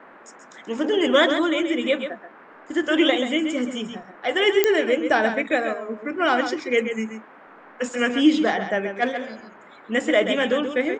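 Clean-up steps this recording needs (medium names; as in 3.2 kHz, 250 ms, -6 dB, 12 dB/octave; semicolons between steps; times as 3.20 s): de-click; noise print and reduce 21 dB; inverse comb 132 ms -8.5 dB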